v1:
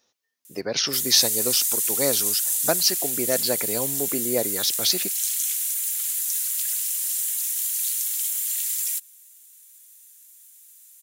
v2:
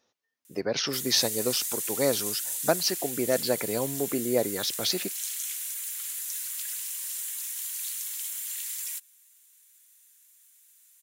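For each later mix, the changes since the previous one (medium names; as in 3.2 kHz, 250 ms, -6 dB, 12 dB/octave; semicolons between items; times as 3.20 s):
master: add treble shelf 3.5 kHz -9.5 dB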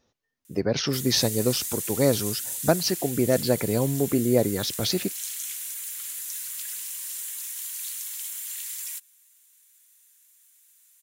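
master: remove high-pass 530 Hz 6 dB/octave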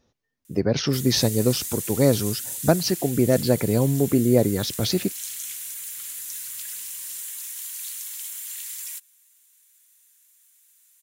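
speech: add bass shelf 340 Hz +6 dB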